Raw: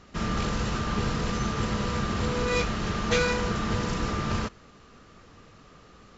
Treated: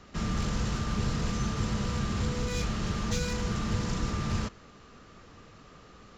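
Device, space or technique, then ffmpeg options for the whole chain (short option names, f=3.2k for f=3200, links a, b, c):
one-band saturation: -filter_complex "[0:a]acrossover=split=230|4800[a][b][c];[b]asoftclip=type=tanh:threshold=-36.5dB[d];[a][d][c]amix=inputs=3:normalize=0"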